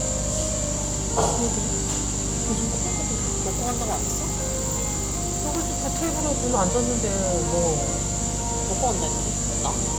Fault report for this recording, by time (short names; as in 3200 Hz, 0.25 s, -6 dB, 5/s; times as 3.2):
hum 50 Hz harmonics 5 -30 dBFS
3.46–6.22 clipped -20.5 dBFS